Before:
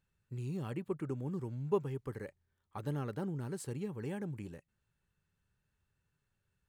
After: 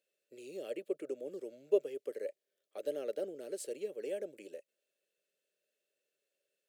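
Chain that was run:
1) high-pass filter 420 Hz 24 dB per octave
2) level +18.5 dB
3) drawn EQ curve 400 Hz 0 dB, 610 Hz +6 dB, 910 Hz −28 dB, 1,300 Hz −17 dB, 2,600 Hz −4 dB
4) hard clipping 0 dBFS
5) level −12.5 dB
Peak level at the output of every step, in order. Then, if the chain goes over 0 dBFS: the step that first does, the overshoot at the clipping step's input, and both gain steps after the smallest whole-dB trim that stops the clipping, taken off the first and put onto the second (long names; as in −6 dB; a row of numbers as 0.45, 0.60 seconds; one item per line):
−22.0, −3.5, −5.0, −5.0, −17.5 dBFS
no step passes full scale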